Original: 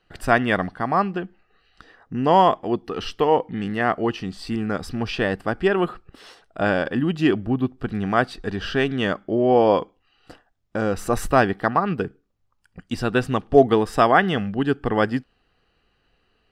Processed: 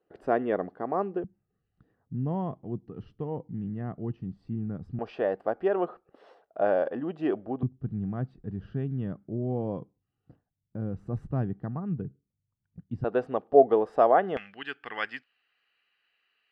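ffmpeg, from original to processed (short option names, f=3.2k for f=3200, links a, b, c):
-af "asetnsamples=n=441:p=0,asendcmd='1.24 bandpass f 130;4.99 bandpass f 590;7.63 bandpass f 130;13.04 bandpass f 570;14.37 bandpass f 2300',bandpass=f=440:t=q:w=2.1:csg=0"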